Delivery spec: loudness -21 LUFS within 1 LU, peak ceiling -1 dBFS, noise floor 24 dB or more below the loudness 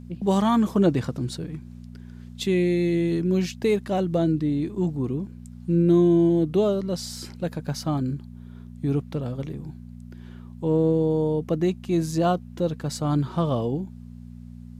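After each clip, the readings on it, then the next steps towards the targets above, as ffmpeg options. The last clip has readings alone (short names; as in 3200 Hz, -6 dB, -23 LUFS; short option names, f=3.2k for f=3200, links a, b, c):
hum 60 Hz; harmonics up to 240 Hz; hum level -40 dBFS; loudness -24.0 LUFS; peak -8.5 dBFS; loudness target -21.0 LUFS
-> -af "bandreject=f=60:t=h:w=4,bandreject=f=120:t=h:w=4,bandreject=f=180:t=h:w=4,bandreject=f=240:t=h:w=4"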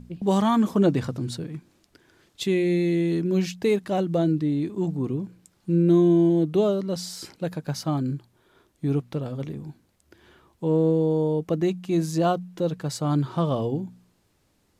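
hum none; loudness -24.5 LUFS; peak -9.5 dBFS; loudness target -21.0 LUFS
-> -af "volume=3.5dB"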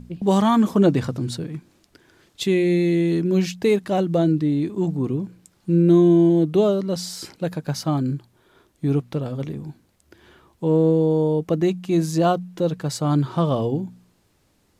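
loudness -21.0 LUFS; peak -6.0 dBFS; noise floor -63 dBFS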